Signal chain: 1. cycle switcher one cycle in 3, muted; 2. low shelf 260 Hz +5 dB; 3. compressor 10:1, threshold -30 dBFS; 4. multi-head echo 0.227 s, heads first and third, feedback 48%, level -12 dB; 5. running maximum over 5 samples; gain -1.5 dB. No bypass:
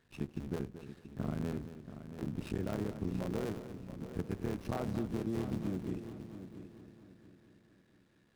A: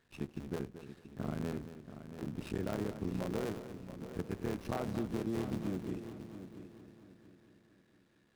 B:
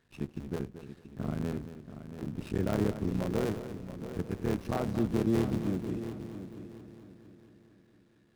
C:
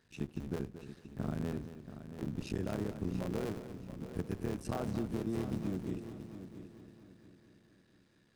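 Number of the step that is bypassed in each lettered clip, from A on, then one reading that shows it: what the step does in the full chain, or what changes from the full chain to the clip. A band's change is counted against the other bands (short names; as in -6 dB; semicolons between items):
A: 2, 125 Hz band -3.5 dB; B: 3, mean gain reduction 3.5 dB; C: 5, distortion -18 dB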